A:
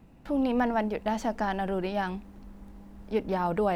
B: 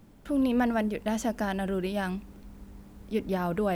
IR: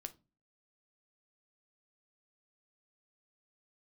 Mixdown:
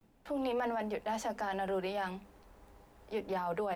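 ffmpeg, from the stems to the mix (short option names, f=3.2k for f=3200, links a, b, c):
-filter_complex "[0:a]agate=range=-33dB:threshold=-47dB:ratio=3:detection=peak,highpass=f=400:w=0.5412,highpass=f=400:w=1.3066,volume=-2.5dB[a];[1:a]bandreject=f=50:t=h:w=6,bandreject=f=100:t=h:w=6,bandreject=f=150:t=h:w=6,bandreject=f=200:t=h:w=6,bandreject=f=250:t=h:w=6,bandreject=f=300:t=h:w=6,adelay=11,volume=-11.5dB[b];[a][b]amix=inputs=2:normalize=0,alimiter=level_in=3dB:limit=-24dB:level=0:latency=1:release=10,volume=-3dB"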